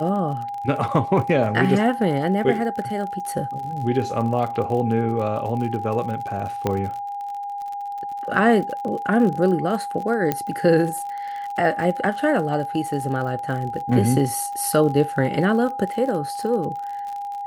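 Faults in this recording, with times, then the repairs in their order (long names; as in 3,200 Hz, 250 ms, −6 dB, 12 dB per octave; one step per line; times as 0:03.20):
surface crackle 49 per second −30 dBFS
whistle 810 Hz −27 dBFS
0:06.67: click −9 dBFS
0:10.32: click −8 dBFS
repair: click removal
notch filter 810 Hz, Q 30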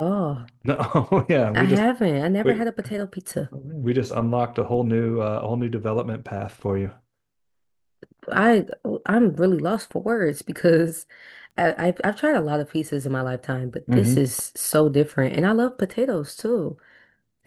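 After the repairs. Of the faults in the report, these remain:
0:10.32: click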